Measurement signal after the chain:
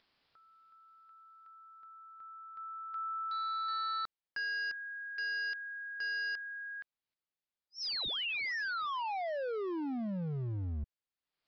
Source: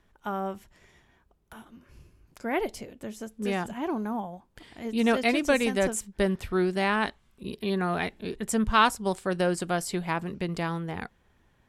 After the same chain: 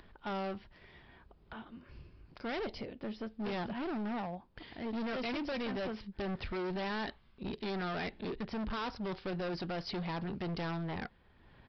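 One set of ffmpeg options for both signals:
ffmpeg -i in.wav -af "alimiter=limit=-18.5dB:level=0:latency=1:release=92,acompressor=mode=upward:threshold=-50dB:ratio=2.5,aresample=11025,asoftclip=type=hard:threshold=-35dB,aresample=44100" out.wav

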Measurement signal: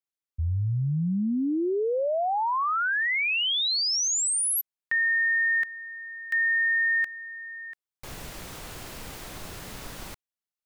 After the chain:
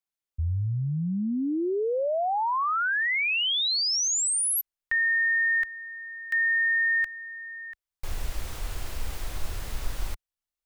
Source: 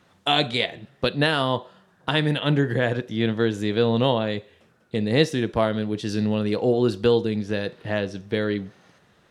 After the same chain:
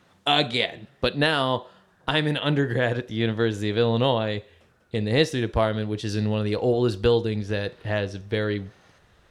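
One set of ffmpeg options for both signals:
ffmpeg -i in.wav -af "asubboost=boost=7.5:cutoff=63" out.wav

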